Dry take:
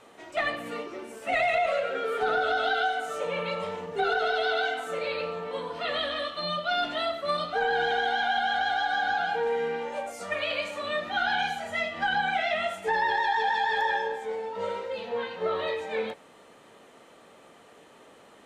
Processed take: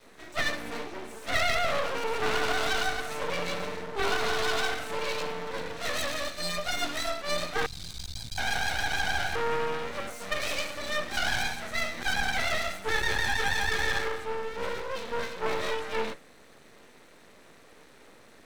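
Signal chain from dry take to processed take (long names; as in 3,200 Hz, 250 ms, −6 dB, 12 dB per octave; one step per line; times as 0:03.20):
lower of the sound and its delayed copy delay 0.51 ms
0:07.66–0:08.38: Chebyshev band-stop filter 150–4,400 Hz, order 3
half-wave rectification
level +5 dB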